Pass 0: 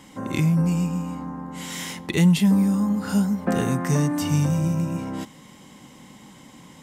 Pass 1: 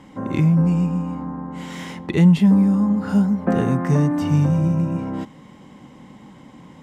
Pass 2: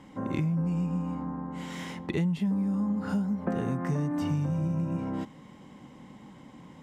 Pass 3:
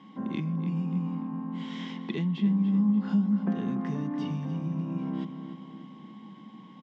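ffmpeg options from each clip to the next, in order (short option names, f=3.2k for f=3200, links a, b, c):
-af "lowpass=f=1.3k:p=1,volume=4dB"
-af "acompressor=threshold=-20dB:ratio=6,volume=-5.5dB"
-filter_complex "[0:a]aeval=exprs='val(0)+0.00282*sin(2*PI*1100*n/s)':c=same,highpass=f=150:w=0.5412,highpass=f=150:w=1.3066,equalizer=f=210:t=q:w=4:g=9,equalizer=f=550:t=q:w=4:g=-7,equalizer=f=1.3k:t=q:w=4:g=-5,equalizer=f=3.3k:t=q:w=4:g=8,lowpass=f=5.4k:w=0.5412,lowpass=f=5.4k:w=1.3066,asplit=2[a][b];[b]adelay=291,lowpass=f=3k:p=1,volume=-9dB,asplit=2[c][d];[d]adelay=291,lowpass=f=3k:p=1,volume=0.54,asplit=2[e][f];[f]adelay=291,lowpass=f=3k:p=1,volume=0.54,asplit=2[g][h];[h]adelay=291,lowpass=f=3k:p=1,volume=0.54,asplit=2[i][j];[j]adelay=291,lowpass=f=3k:p=1,volume=0.54,asplit=2[k][l];[l]adelay=291,lowpass=f=3k:p=1,volume=0.54[m];[a][c][e][g][i][k][m]amix=inputs=7:normalize=0,volume=-3.5dB"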